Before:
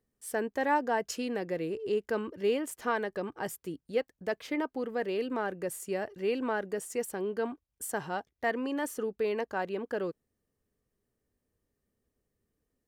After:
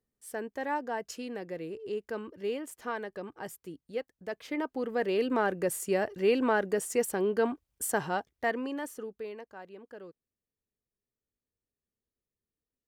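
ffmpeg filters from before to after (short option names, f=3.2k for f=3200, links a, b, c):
-af "volume=5dB,afade=t=in:st=4.29:d=1.11:silence=0.316228,afade=t=out:st=7.88:d=0.97:silence=0.334965,afade=t=out:st=8.85:d=0.61:silence=0.354813"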